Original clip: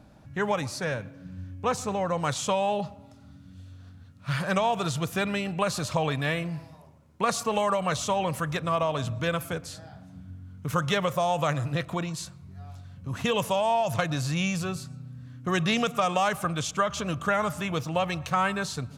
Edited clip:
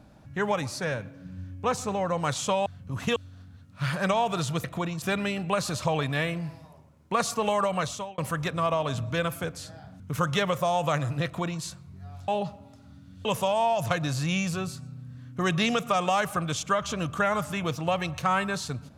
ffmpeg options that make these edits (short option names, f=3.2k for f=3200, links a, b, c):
-filter_complex "[0:a]asplit=9[a][b][c][d][e][f][g][h][i];[a]atrim=end=2.662[j];[b]atrim=start=12.828:end=13.332[k];[c]atrim=start=3.628:end=5.112[l];[d]atrim=start=11.798:end=12.182[m];[e]atrim=start=5.108:end=8.27,asetpts=PTS-STARTPTS,afade=t=out:st=2.742:d=0.42[n];[f]atrim=start=8.27:end=10.092,asetpts=PTS-STARTPTS,afade=t=in:d=0.004:c=hsin[o];[g]atrim=start=10.548:end=12.832[p];[h]atrim=start=2.658:end=3.632[q];[i]atrim=start=13.328[r];[j][k]acrossfade=d=0.004:c1=hsin:c2=hsin[s];[s][l]acrossfade=d=0.004:c1=hsin:c2=hsin[t];[t][m]acrossfade=d=0.004:c1=hsin:c2=hsin[u];[n][o]concat=n=2:v=0:a=1[v];[u][v]acrossfade=d=0.004:c1=hsin:c2=hsin[w];[w][p]acrossfade=d=0.004:c1=hsin:c2=hsin[x];[x][q]acrossfade=d=0.004:c1=hsin:c2=hsin[y];[y][r]acrossfade=d=0.004:c1=hsin:c2=hsin"